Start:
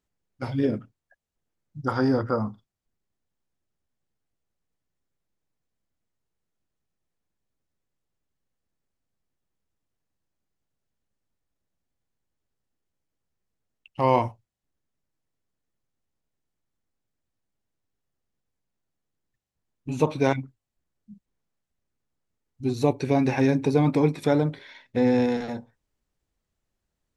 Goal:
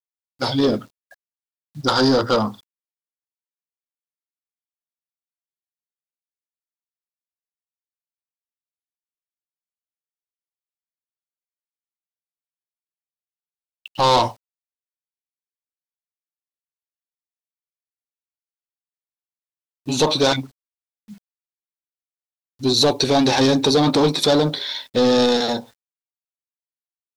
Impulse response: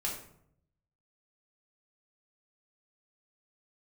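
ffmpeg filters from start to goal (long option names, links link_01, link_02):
-filter_complex "[0:a]asplit=2[link_01][link_02];[link_02]highpass=frequency=720:poles=1,volume=23dB,asoftclip=type=tanh:threshold=-7dB[link_03];[link_01][link_03]amix=inputs=2:normalize=0,lowpass=frequency=2600:poles=1,volume=-6dB,highshelf=frequency=3000:width_type=q:width=3:gain=9,acrusher=bits=8:mix=0:aa=0.000001"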